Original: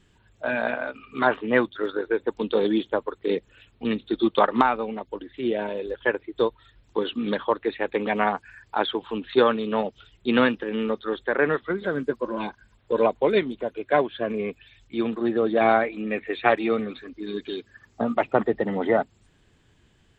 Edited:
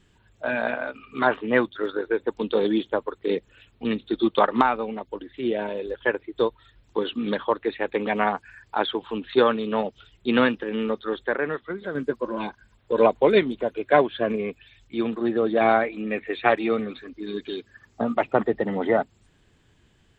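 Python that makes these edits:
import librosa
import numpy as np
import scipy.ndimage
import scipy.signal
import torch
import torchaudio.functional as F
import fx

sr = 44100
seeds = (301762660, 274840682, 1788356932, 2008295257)

y = fx.edit(x, sr, fx.clip_gain(start_s=11.36, length_s=0.59, db=-5.0),
    fx.clip_gain(start_s=12.98, length_s=1.38, db=3.0), tone=tone)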